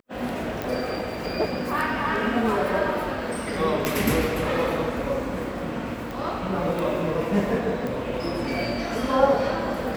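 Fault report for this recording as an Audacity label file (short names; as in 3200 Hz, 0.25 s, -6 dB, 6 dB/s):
0.620000	0.620000	pop
3.850000	3.850000	pop -8 dBFS
6.110000	6.110000	pop
7.870000	7.870000	pop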